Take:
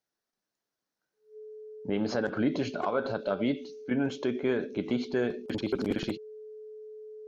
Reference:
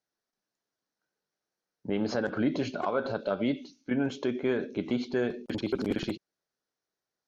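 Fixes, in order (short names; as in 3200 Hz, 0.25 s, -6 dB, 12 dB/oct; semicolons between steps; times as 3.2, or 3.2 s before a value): notch 430 Hz, Q 30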